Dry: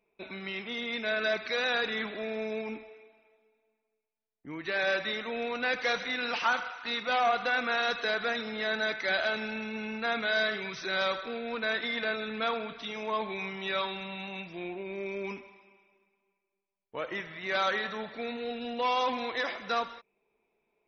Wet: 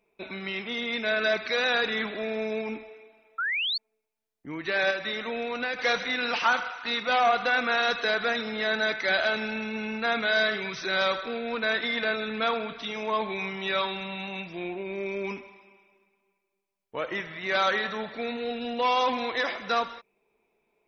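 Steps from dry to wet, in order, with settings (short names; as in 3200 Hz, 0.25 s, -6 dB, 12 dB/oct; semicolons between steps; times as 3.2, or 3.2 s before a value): 3.38–3.78 painted sound rise 1300–4600 Hz -32 dBFS; 4.9–5.79 compressor, threshold -31 dBFS, peak gain reduction 6.5 dB; gain +4 dB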